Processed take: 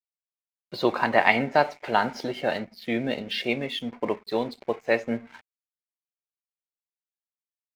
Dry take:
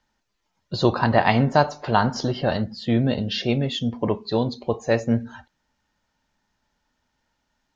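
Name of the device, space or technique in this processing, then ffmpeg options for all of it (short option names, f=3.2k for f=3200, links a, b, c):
pocket radio on a weak battery: -filter_complex "[0:a]highpass=280,lowpass=4.3k,aeval=exprs='sgn(val(0))*max(abs(val(0))-0.00531,0)':c=same,equalizer=f=2.2k:t=o:w=0.42:g=11,asettb=1/sr,asplit=3[a][b][c];[a]atrim=end=1.284[d];[b]atrim=start=1.28:end=3.51,asetpts=PTS-STARTPTS,afade=t=in:d=0.004:c=qsin,afade=t=out:st=2.226:d=0.004:c=qsin,bandreject=f=1.1k:w=6.4[e];[c]atrim=start=3.506[f];[d][e]acrossfade=d=0.004:c1=hsin:c2=qsin[g];[g][f]acrossfade=d=0.004:c1=qsin:c2=hsin,volume=-2dB"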